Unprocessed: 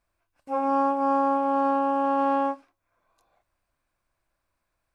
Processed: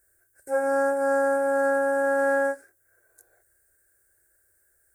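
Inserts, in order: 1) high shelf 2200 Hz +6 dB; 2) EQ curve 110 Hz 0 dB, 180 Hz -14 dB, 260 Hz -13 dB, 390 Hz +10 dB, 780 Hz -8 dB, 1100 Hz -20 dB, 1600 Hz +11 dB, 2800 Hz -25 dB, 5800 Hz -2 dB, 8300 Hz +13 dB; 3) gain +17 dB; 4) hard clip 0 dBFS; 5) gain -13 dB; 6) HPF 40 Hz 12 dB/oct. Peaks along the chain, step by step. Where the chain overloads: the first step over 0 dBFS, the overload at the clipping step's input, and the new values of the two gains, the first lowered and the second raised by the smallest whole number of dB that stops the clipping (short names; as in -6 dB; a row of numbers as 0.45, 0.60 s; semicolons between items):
-12.5, -18.5, -1.5, -1.5, -14.5, -14.5 dBFS; no overload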